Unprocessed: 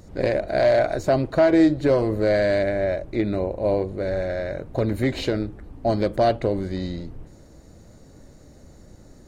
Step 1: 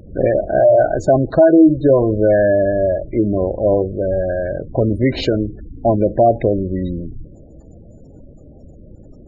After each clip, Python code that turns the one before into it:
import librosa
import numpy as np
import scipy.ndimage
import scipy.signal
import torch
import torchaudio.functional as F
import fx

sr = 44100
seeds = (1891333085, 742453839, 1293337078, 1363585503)

y = fx.spec_gate(x, sr, threshold_db=-20, keep='strong')
y = F.gain(torch.from_numpy(y), 7.0).numpy()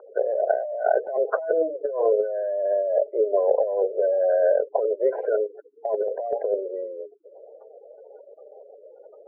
y = scipy.signal.sosfilt(scipy.signal.cheby1(5, 1.0, [420.0, 1500.0], 'bandpass', fs=sr, output='sos'), x)
y = fx.over_compress(y, sr, threshold_db=-23.0, ratio=-1.0)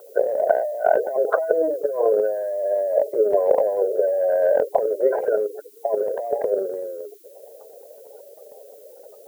y = fx.transient(x, sr, attack_db=5, sustain_db=9)
y = fx.dmg_noise_colour(y, sr, seeds[0], colour='violet', level_db=-53.0)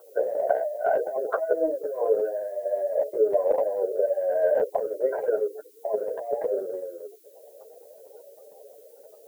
y = fx.chorus_voices(x, sr, voices=4, hz=0.82, base_ms=11, depth_ms=4.8, mix_pct=45)
y = F.gain(torch.from_numpy(y), -2.0).numpy()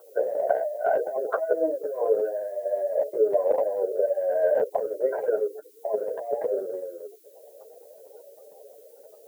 y = scipy.signal.sosfilt(scipy.signal.butter(2, 71.0, 'highpass', fs=sr, output='sos'), x)
y = fx.end_taper(y, sr, db_per_s=550.0)